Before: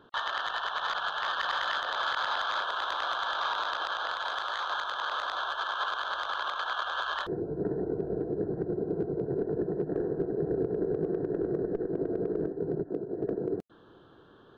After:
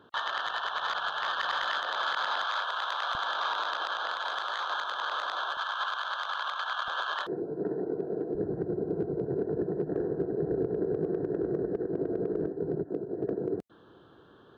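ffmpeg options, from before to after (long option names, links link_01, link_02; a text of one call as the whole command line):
ffmpeg -i in.wav -af "asetnsamples=nb_out_samples=441:pad=0,asendcmd='1.64 highpass f 160;2.43 highpass f 560;3.15 highpass f 170;5.57 highpass f 690;6.88 highpass f 200;8.35 highpass f 49',highpass=63" out.wav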